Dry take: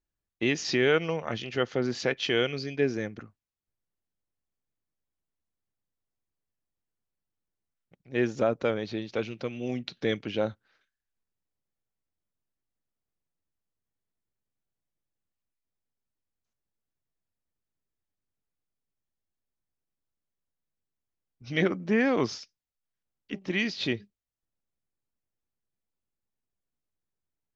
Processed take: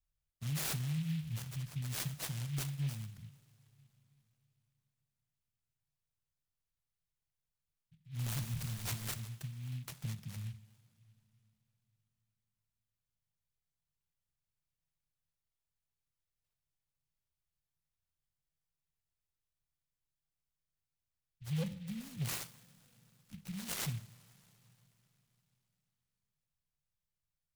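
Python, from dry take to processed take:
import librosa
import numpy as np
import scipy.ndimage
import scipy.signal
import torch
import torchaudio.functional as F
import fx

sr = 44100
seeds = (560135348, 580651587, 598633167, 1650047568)

y = fx.zero_step(x, sr, step_db=-32.0, at=(8.19, 9.14))
y = scipy.signal.sosfilt(scipy.signal.cheby1(4, 1.0, [160.0, 4300.0], 'bandstop', fs=sr, output='sos'), y)
y = 10.0 ** (-33.0 / 20.0) * (np.abs((y / 10.0 ** (-33.0 / 20.0) + 3.0) % 4.0 - 2.0) - 1.0)
y = fx.rev_double_slope(y, sr, seeds[0], early_s=0.51, late_s=3.9, knee_db=-18, drr_db=9.0)
y = fx.noise_mod_delay(y, sr, seeds[1], noise_hz=2700.0, depth_ms=0.096)
y = F.gain(torch.from_numpy(y), 1.5).numpy()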